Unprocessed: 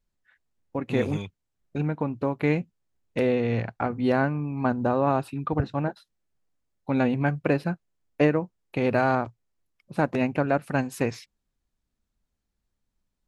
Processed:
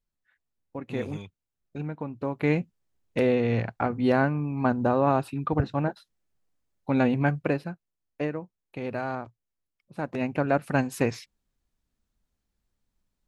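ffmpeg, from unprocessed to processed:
ffmpeg -i in.wav -af "volume=10.5dB,afade=type=in:start_time=2.13:duration=0.45:silence=0.446684,afade=type=out:start_time=7.3:duration=0.43:silence=0.334965,afade=type=in:start_time=9.99:duration=0.65:silence=0.316228" out.wav

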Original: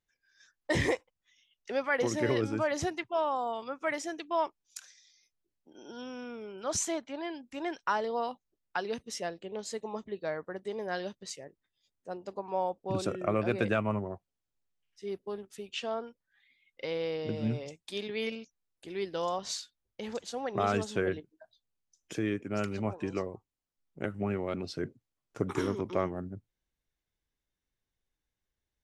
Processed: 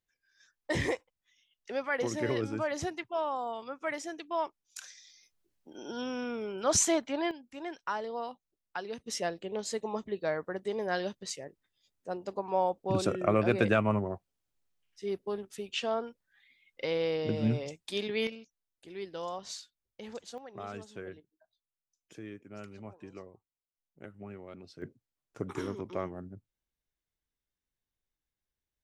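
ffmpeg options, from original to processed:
ffmpeg -i in.wav -af "asetnsamples=nb_out_samples=441:pad=0,asendcmd='4.78 volume volume 6dB;7.31 volume volume -4.5dB;9.06 volume volume 3dB;18.27 volume volume -5.5dB;20.38 volume volume -13dB;24.82 volume volume -5dB',volume=-2.5dB" out.wav

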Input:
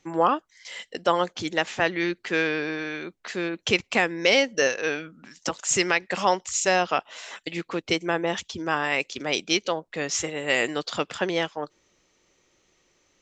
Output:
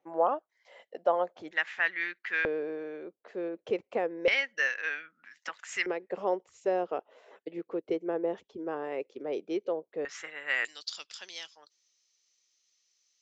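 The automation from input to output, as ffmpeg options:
ffmpeg -i in.wav -af "asetnsamples=nb_out_samples=441:pad=0,asendcmd='1.51 bandpass f 1800;2.45 bandpass f 500;4.28 bandpass f 1800;5.86 bandpass f 440;10.05 bandpass f 1600;10.65 bandpass f 5200',bandpass=frequency=640:width_type=q:width=2.7:csg=0" out.wav

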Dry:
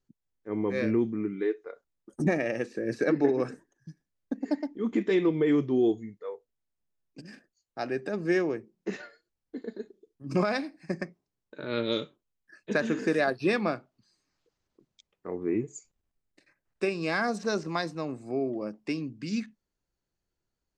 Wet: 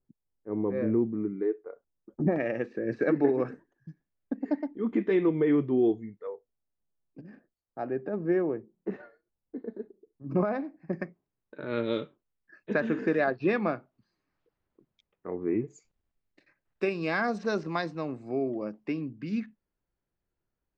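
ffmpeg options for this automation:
ffmpeg -i in.wav -af "asetnsamples=nb_out_samples=441:pad=0,asendcmd='2.36 lowpass f 2200;6.27 lowpass f 1100;10.93 lowpass f 2300;15.7 lowpass f 3700;18.83 lowpass f 2300',lowpass=1000" out.wav

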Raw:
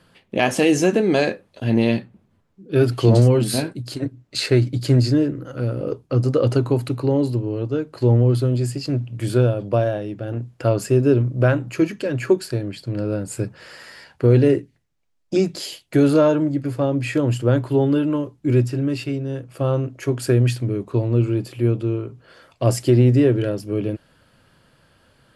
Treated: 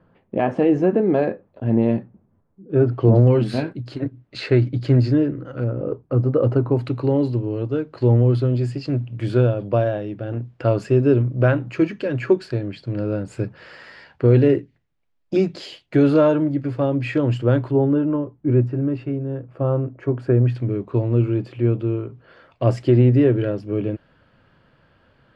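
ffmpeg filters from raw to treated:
ffmpeg -i in.wav -af "asetnsamples=nb_out_samples=441:pad=0,asendcmd='3.27 lowpass f 2600;5.64 lowpass f 1400;6.77 lowpass f 3400;17.71 lowpass f 1300;20.55 lowpass f 2700',lowpass=1100" out.wav

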